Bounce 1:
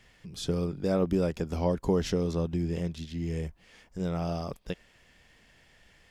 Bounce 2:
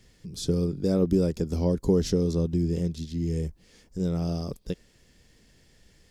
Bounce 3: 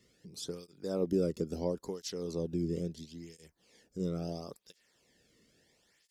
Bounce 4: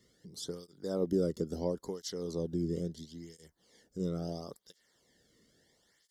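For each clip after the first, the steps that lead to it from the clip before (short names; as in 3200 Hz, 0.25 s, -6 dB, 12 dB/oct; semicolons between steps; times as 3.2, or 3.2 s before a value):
band shelf 1400 Hz -10.5 dB 2.7 oct; gain +4.5 dB
tape flanging out of phase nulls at 0.74 Hz, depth 1.3 ms; gain -4 dB
Butterworth band-stop 2500 Hz, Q 3.7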